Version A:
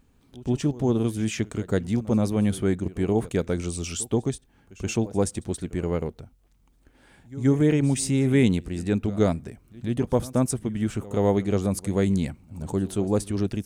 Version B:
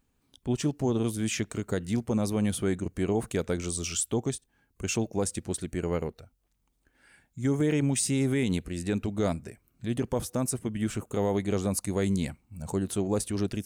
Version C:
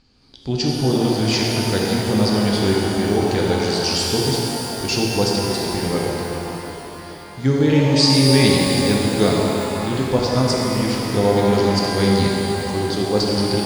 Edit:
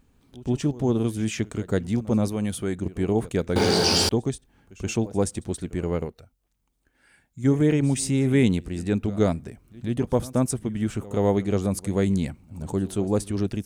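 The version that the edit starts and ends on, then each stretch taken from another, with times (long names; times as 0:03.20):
A
0:02.28–0:02.78: punch in from B
0:03.56–0:04.09: punch in from C
0:06.05–0:07.44: punch in from B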